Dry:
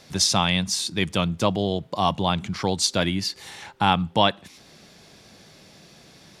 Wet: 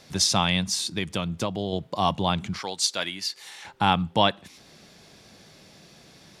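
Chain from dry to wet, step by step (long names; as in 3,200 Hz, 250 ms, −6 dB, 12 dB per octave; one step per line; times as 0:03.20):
0:00.87–0:01.73: downward compressor, threshold −22 dBFS, peak gain reduction 7.5 dB
0:02.59–0:03.65: high-pass filter 1,100 Hz 6 dB per octave
level −1.5 dB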